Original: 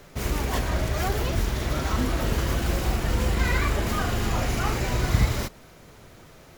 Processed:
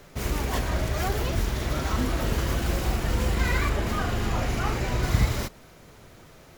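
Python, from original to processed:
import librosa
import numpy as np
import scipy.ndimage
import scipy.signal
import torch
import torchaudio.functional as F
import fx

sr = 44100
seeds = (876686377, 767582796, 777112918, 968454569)

y = fx.high_shelf(x, sr, hz=5400.0, db=-5.5, at=(3.69, 5.03))
y = F.gain(torch.from_numpy(y), -1.0).numpy()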